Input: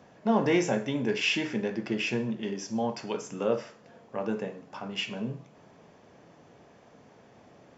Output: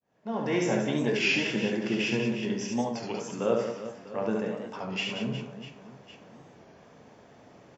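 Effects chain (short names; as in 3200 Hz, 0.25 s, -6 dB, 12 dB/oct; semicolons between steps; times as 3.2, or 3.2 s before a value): opening faded in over 0.86 s; 2.81–3.33 compressor, threshold -31 dBFS, peak gain reduction 6.5 dB; on a send: reverse bouncing-ball echo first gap 70 ms, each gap 1.6×, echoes 5; on the sum: record warp 33 1/3 rpm, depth 100 cents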